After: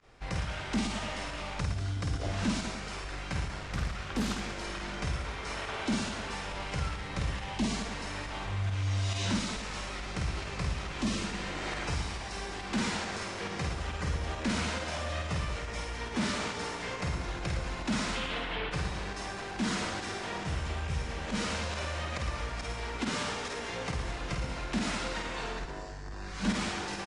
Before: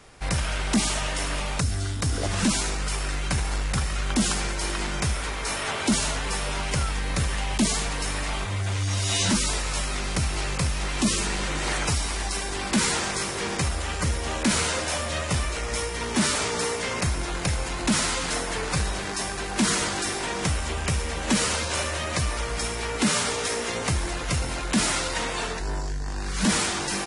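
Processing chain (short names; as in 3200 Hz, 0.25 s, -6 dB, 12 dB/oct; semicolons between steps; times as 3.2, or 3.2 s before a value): 18.15–18.71 resonant high shelf 4700 Hz -14 dB, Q 3; pump 138 bpm, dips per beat 1, -18 dB, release 62 ms; air absorption 98 m; reverse bouncing-ball echo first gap 50 ms, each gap 1.25×, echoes 5; 3.57–4.64 Doppler distortion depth 0.52 ms; gain -8.5 dB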